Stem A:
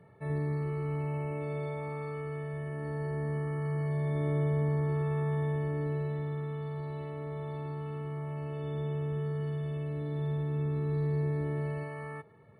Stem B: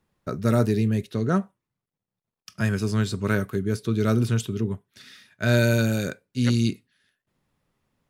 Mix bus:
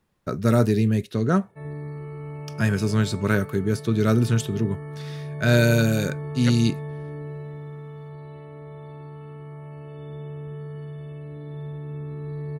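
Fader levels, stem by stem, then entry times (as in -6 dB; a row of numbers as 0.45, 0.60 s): -2.0, +2.0 dB; 1.35, 0.00 s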